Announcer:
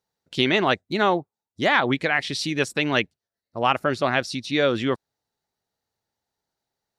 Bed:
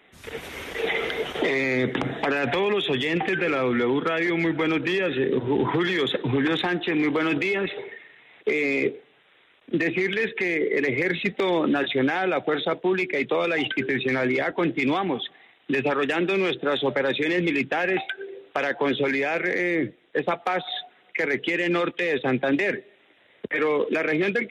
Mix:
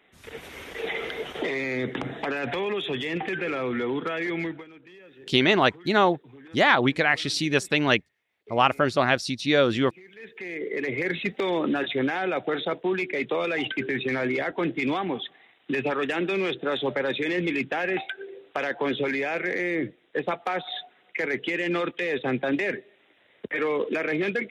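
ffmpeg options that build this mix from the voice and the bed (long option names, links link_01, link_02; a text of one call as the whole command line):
ffmpeg -i stem1.wav -i stem2.wav -filter_complex "[0:a]adelay=4950,volume=0.5dB[link_01];[1:a]volume=17.5dB,afade=type=out:start_time=4.4:duration=0.25:silence=0.0944061,afade=type=in:start_time=10.13:duration=0.96:silence=0.0749894[link_02];[link_01][link_02]amix=inputs=2:normalize=0" out.wav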